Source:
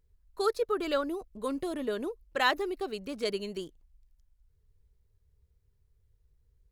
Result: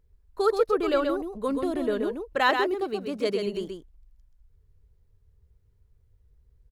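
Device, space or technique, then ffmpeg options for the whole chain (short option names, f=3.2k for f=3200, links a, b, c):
behind a face mask: -filter_complex "[0:a]asettb=1/sr,asplit=3[a][b][c];[a]atrim=end=2.394[d];[b]atrim=start=2.39:end=3.47,asetpts=PTS-STARTPTS,afade=t=in:d=0.004:c=qsin,afade=t=out:st=1.076:d=0.004:c=qsin,highpass=71[e];[c]atrim=start=3.466[f];[d][e]acrossfade=d=0.004:c1=hsin:c2=qsin[g];[g][f]acrossfade=d=0.004:c1=qsin:c2=hsin,highshelf=f=2.5k:g=-8,aecho=1:1:130:0.531,volume=5.5dB"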